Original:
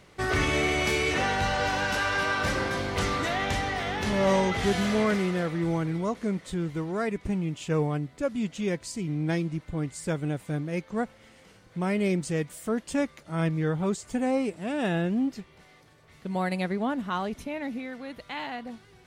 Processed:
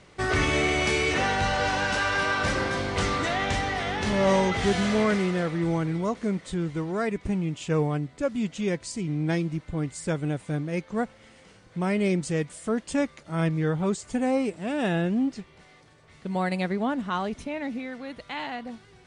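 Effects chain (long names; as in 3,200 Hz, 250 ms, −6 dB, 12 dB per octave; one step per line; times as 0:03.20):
Butterworth low-pass 9,900 Hz 96 dB per octave
level +1.5 dB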